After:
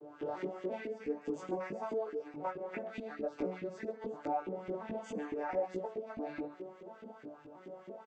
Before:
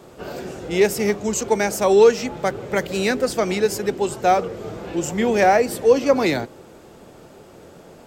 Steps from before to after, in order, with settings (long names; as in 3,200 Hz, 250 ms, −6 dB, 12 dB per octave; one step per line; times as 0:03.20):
vocoder with an arpeggio as carrier major triad, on D3, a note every 343 ms
high-shelf EQ 4,900 Hz +11.5 dB
downward compressor 16 to 1, threshold −31 dBFS, peak gain reduction 24.5 dB
single-tap delay 137 ms −12 dB
convolution reverb RT60 0.45 s, pre-delay 7 ms, DRR 7.5 dB
auto-filter band-pass saw up 4.7 Hz 310–2,400 Hz
soft clipping −25.5 dBFS, distortion −31 dB
multi-voice chorus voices 4, 0.9 Hz, delay 18 ms, depth 2.2 ms
level +8 dB